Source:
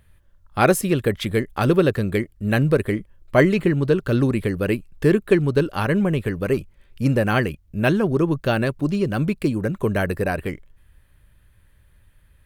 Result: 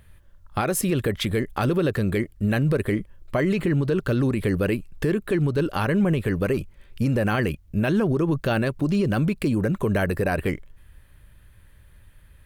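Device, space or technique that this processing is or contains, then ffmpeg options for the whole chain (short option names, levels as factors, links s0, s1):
stacked limiters: -af "alimiter=limit=0.376:level=0:latency=1:release=227,alimiter=limit=0.178:level=0:latency=1:release=74,alimiter=limit=0.126:level=0:latency=1,volume=1.58"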